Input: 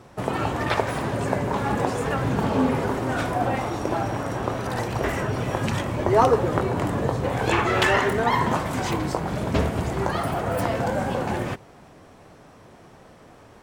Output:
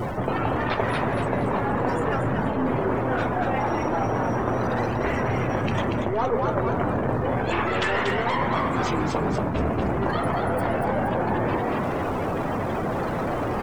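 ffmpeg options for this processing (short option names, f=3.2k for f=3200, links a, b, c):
-filter_complex "[0:a]aeval=exprs='val(0)+0.5*0.0531*sgn(val(0))':c=same,aeval=exprs='0.631*(cos(1*acos(clip(val(0)/0.631,-1,1)))-cos(1*PI/2))+0.0501*(cos(6*acos(clip(val(0)/0.631,-1,1)))-cos(6*PI/2))':c=same,afftdn=nr=22:nf=-32,asplit=6[a][b][c][d][e][f];[b]adelay=236,afreqshift=120,volume=-5dB[g];[c]adelay=472,afreqshift=240,volume=-12.7dB[h];[d]adelay=708,afreqshift=360,volume=-20.5dB[i];[e]adelay=944,afreqshift=480,volume=-28.2dB[j];[f]adelay=1180,afreqshift=600,volume=-36dB[k];[a][g][h][i][j][k]amix=inputs=6:normalize=0,areverse,acompressor=threshold=-28dB:ratio=5,areverse,volume=6dB"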